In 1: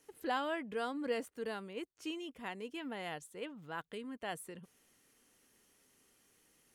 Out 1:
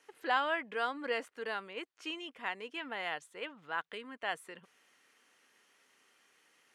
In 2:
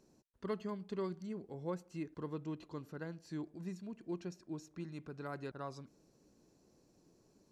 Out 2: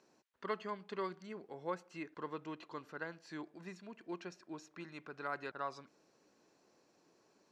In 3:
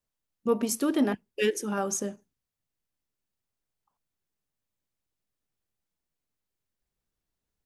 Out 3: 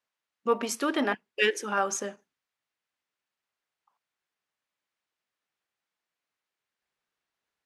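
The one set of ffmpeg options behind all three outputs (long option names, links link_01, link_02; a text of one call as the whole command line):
ffmpeg -i in.wav -af "bandpass=frequency=1700:width_type=q:width=0.71:csg=0,volume=8dB" out.wav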